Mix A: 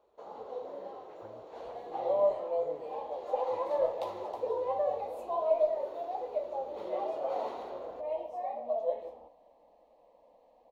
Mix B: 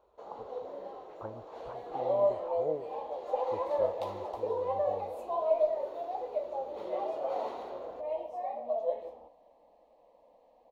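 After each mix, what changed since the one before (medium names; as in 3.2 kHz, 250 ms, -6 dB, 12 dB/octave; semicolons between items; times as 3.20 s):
speech +10.5 dB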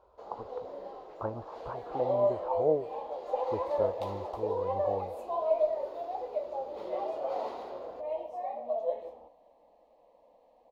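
speech +7.5 dB; first sound: remove band-stop 4.9 kHz, Q 6.9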